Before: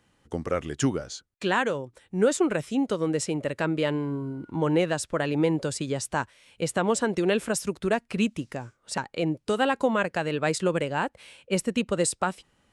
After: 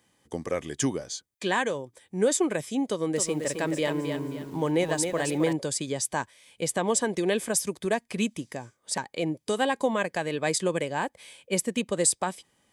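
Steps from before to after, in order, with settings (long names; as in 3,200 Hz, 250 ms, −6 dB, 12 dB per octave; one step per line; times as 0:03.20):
high-shelf EQ 4,700 Hz +10.5 dB
notch comb filter 1,400 Hz
0:02.87–0:05.53: feedback echo at a low word length 266 ms, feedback 35%, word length 8 bits, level −6 dB
level −1.5 dB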